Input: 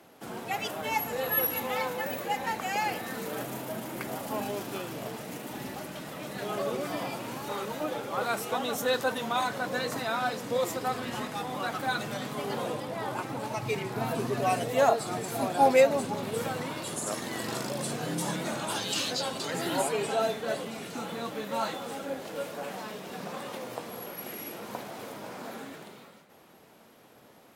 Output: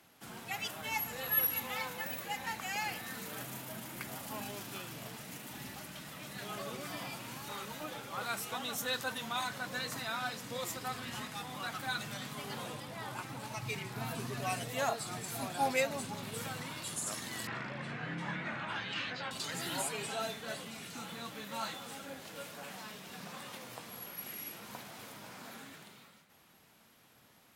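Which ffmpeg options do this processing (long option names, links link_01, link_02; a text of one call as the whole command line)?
ffmpeg -i in.wav -filter_complex "[0:a]asettb=1/sr,asplit=3[link_01][link_02][link_03];[link_01]atrim=end=17.474[link_04];[link_02]atrim=start=17.47:end=19.31,asetpts=PTS-STARTPTS,afade=type=in:duration=0.004:curve=qsin,afade=type=out:start_time=1.836:duration=0.004:curve=qsin,lowpass=frequency=2000:width_type=q:width=2.1[link_05];[link_03]atrim=start=19.306[link_06];[link_04][link_05]acrossfade=duration=0.004:curve1=hsin:curve2=qsin[link_07];[link_07][link_06]acrossfade=duration=0.004:curve1=qsin:curve2=hsin,equalizer=frequency=460:width_type=o:width=2.3:gain=-12,volume=-2dB" out.wav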